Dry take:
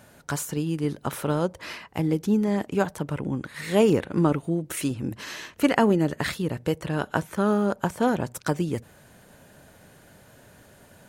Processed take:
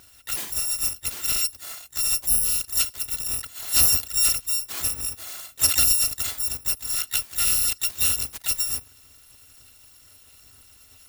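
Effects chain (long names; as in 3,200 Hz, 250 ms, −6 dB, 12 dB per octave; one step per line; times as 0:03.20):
samples in bit-reversed order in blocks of 256 samples
pitch-shifted copies added +5 semitones −6 dB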